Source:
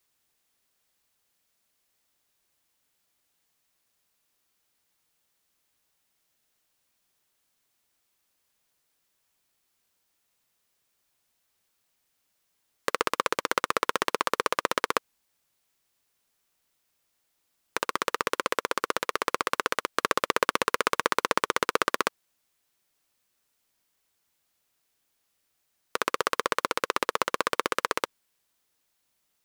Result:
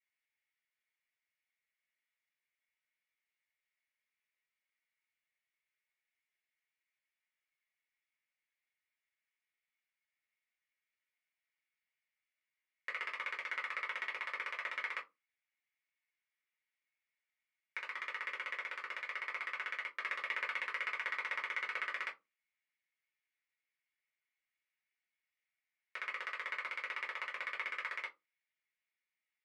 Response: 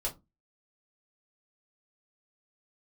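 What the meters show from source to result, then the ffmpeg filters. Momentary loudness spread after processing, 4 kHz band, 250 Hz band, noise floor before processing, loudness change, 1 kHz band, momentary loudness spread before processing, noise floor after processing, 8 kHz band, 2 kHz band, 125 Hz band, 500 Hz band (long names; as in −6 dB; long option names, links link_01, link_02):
6 LU, −15.5 dB, below −30 dB, −76 dBFS, −11.5 dB, −18.0 dB, 6 LU, below −85 dBFS, below −25 dB, −7.0 dB, below −35 dB, −25.0 dB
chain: -filter_complex "[0:a]bandpass=frequency=2100:width_type=q:width=7:csg=0[link_01];[1:a]atrim=start_sample=2205[link_02];[link_01][link_02]afir=irnorm=-1:irlink=0,volume=-1.5dB"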